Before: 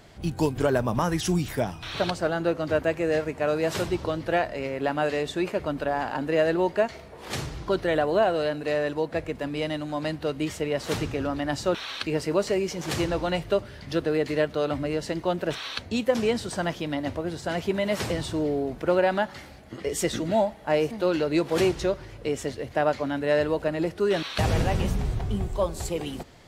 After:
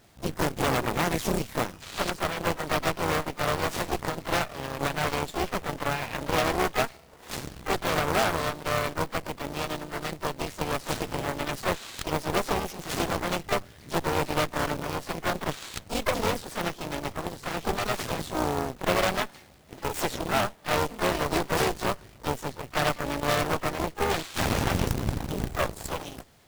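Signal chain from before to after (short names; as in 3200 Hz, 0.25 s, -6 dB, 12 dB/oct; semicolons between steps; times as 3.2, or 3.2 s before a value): harmoniser +3 st -5 dB, +12 st -7 dB; added harmonics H 7 -27 dB, 8 -10 dB, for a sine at -6.5 dBFS; companded quantiser 4-bit; gain -7.5 dB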